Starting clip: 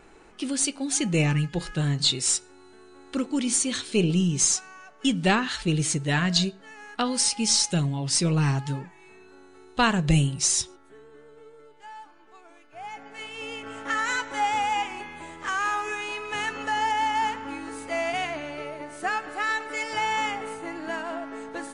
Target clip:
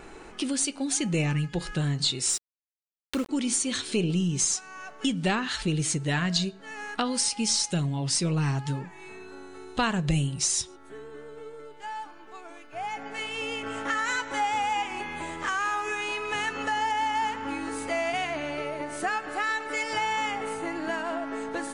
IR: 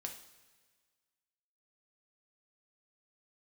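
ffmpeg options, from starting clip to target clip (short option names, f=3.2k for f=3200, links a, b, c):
-filter_complex "[0:a]asettb=1/sr,asplit=3[a][b][c];[a]atrim=end=2.294[d];[b]atrim=start=2.29:end=3.29,asetpts=PTS-STARTPTS,afade=t=in:d=0.004:c=qsin,afade=t=out:st=0.996:d=0.004:c=qsin,aeval=exprs='val(0)*gte(abs(val(0)),0.0178)':c=same[e];[c]atrim=start=3.286[f];[d][e]acrossfade=d=0.004:c1=hsin:c2=qsin[g];[g][f]acrossfade=d=0.004:c1=qsin:c2=hsin,acompressor=threshold=-39dB:ratio=2,volume=7dB"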